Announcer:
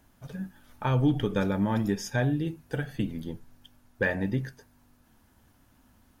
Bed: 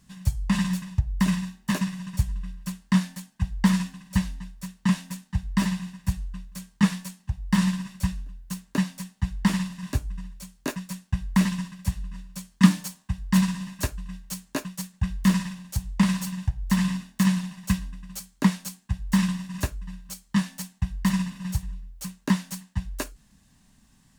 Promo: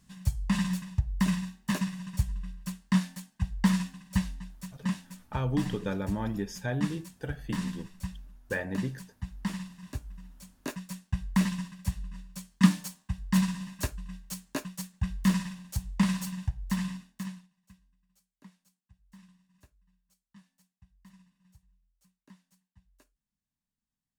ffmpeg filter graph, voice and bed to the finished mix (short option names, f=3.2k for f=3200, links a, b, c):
-filter_complex "[0:a]adelay=4500,volume=-5.5dB[a];[1:a]volume=2.5dB,afade=t=out:st=4.52:d=0.51:silence=0.446684,afade=t=in:st=10.19:d=0.8:silence=0.473151,afade=t=out:st=16.39:d=1.09:silence=0.0375837[b];[a][b]amix=inputs=2:normalize=0"